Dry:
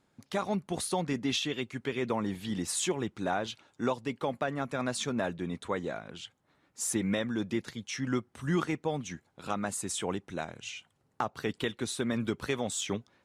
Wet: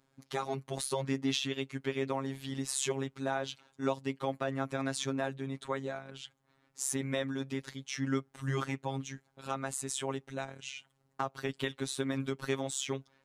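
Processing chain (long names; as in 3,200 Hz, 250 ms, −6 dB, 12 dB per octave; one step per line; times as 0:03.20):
phases set to zero 135 Hz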